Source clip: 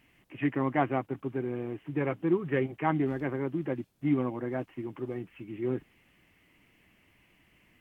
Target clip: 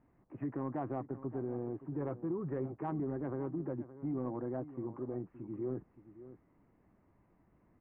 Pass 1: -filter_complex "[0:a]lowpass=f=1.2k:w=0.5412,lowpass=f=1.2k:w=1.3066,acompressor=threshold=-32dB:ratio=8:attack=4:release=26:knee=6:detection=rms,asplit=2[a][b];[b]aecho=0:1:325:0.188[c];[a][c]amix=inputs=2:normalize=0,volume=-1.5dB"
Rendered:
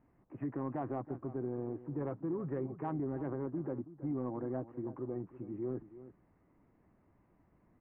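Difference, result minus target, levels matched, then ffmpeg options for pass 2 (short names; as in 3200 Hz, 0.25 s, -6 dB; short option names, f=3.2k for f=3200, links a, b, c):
echo 0.245 s early
-filter_complex "[0:a]lowpass=f=1.2k:w=0.5412,lowpass=f=1.2k:w=1.3066,acompressor=threshold=-32dB:ratio=8:attack=4:release=26:knee=6:detection=rms,asplit=2[a][b];[b]aecho=0:1:570:0.188[c];[a][c]amix=inputs=2:normalize=0,volume=-1.5dB"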